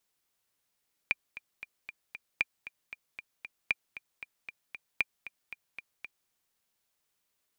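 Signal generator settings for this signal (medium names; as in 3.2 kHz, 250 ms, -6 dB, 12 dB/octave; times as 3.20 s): metronome 231 bpm, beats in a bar 5, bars 4, 2.39 kHz, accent 15.5 dB -12.5 dBFS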